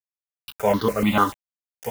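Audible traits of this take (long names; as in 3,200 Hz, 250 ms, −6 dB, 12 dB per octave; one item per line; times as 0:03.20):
a quantiser's noise floor 6 bits, dither none
tremolo saw up 9.7 Hz, depth 40%
notches that jump at a steady rate 6.8 Hz 630–2,400 Hz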